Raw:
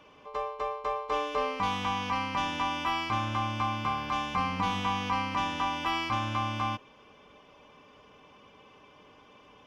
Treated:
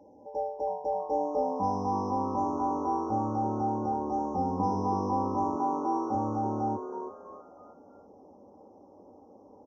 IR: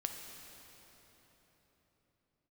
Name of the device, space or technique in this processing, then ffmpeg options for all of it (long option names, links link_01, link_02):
frequency-shifting delay pedal into a guitar cabinet: -filter_complex "[0:a]asettb=1/sr,asplit=3[link_01][link_02][link_03];[link_01]atrim=end=5.554[link_04];[link_02]atrim=start=5.55:end=6.15,asetpts=PTS-STARTPTS,afade=type=in:duration=0.004:curve=qsin,afade=type=out:start_time=0.596:duration=0.004:curve=qsin,highpass=frequency=120:width=0.5412,highpass=frequency=120:width=1.3066[link_05];[link_03]atrim=start=6.146[link_06];[link_04][link_05]acrossfade=duration=0.004:curve1=hsin:curve2=qsin[link_07];[link_07][link_06]acrossfade=duration=0.004:curve1=qsin:curve2=hsin,afftfilt=real='re*(1-between(b*sr/4096,1000,5100))':imag='im*(1-between(b*sr/4096,1000,5100))':win_size=4096:overlap=0.75,aecho=1:1:3.7:0.93,asplit=5[link_08][link_09][link_10][link_11][link_12];[link_09]adelay=324,afreqshift=150,volume=-9.5dB[link_13];[link_10]adelay=648,afreqshift=300,volume=-17.5dB[link_14];[link_11]adelay=972,afreqshift=450,volume=-25.4dB[link_15];[link_12]adelay=1296,afreqshift=600,volume=-33.4dB[link_16];[link_08][link_13][link_14][link_15][link_16]amix=inputs=5:normalize=0,highpass=87,equalizer=frequency=100:width_type=q:width=4:gain=6,equalizer=frequency=380:width_type=q:width=4:gain=8,equalizer=frequency=1600:width_type=q:width=4:gain=-8,lowpass=frequency=4400:width=0.5412,lowpass=frequency=4400:width=1.3066"